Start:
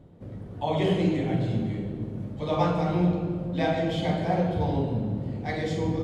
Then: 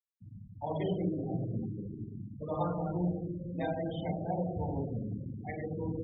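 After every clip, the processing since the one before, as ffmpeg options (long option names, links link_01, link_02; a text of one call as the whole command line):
ffmpeg -i in.wav -af "afftfilt=real='re*gte(hypot(re,im),0.0562)':imag='im*gte(hypot(re,im),0.0562)':win_size=1024:overlap=0.75,volume=-8.5dB" out.wav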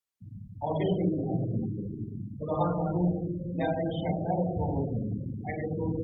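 ffmpeg -i in.wav -af "volume=5dB" -ar 48000 -c:a libopus -b:a 64k out.opus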